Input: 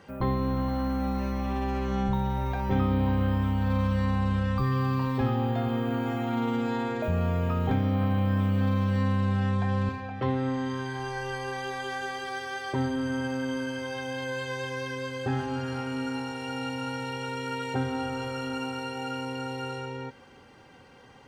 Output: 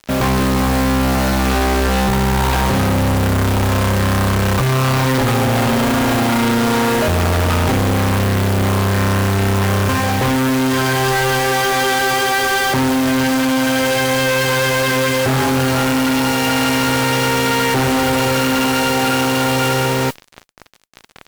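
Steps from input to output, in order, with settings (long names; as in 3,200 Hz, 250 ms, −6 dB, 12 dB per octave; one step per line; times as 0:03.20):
fuzz pedal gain 38 dB, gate −45 dBFS
noise that follows the level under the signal 18 dB
harmonic generator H 5 −10 dB, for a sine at −8.5 dBFS
level −1.5 dB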